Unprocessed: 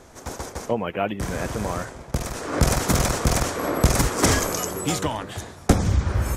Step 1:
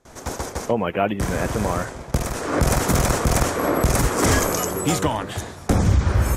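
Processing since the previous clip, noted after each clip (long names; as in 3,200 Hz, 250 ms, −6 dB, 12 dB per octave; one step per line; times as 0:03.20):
noise gate with hold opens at −38 dBFS
dynamic equaliser 4,500 Hz, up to −4 dB, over −39 dBFS, Q 0.8
boost into a limiter +11.5 dB
level −7 dB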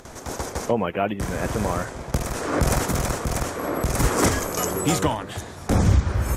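upward compression, threshold −23 dBFS
sample-and-hold tremolo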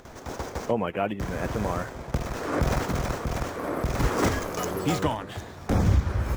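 running median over 5 samples
level −3.5 dB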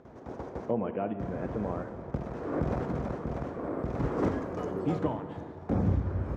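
resonant band-pass 270 Hz, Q 0.53
convolution reverb RT60 2.4 s, pre-delay 13 ms, DRR 9 dB
level −2.5 dB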